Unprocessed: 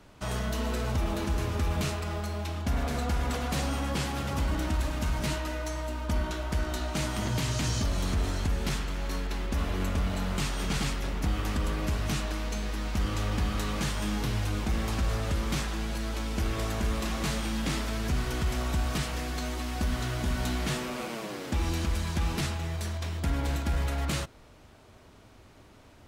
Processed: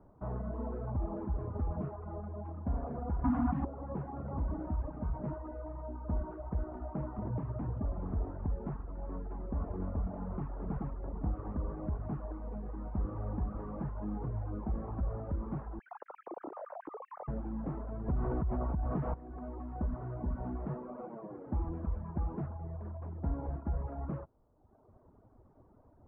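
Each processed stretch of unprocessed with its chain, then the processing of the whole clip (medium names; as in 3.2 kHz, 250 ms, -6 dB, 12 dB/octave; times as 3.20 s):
3.24–3.65 s: FFT filter 170 Hz 0 dB, 270 Hz +12 dB, 410 Hz -21 dB, 810 Hz +2 dB, 10 kHz +15 dB + level flattener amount 100%
15.79–17.28 s: formants replaced by sine waves + compression, threshold -34 dBFS
18.08–19.14 s: tone controls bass 0 dB, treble +3 dB + level flattener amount 100%
whole clip: reverb removal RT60 1.1 s; inverse Chebyshev low-pass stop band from 4.5 kHz, stop band 70 dB; trim -4 dB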